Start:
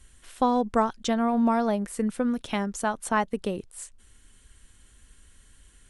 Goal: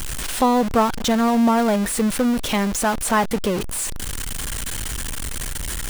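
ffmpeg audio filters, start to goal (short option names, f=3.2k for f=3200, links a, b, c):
-af "aeval=exprs='val(0)+0.5*0.0596*sgn(val(0))':c=same,volume=3.5dB"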